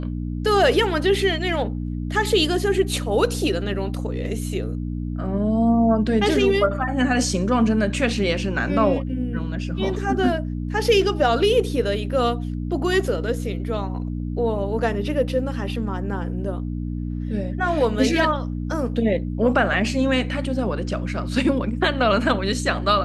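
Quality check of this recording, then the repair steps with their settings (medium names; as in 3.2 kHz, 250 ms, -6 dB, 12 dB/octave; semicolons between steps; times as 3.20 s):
hum 60 Hz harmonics 5 -27 dBFS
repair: de-hum 60 Hz, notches 5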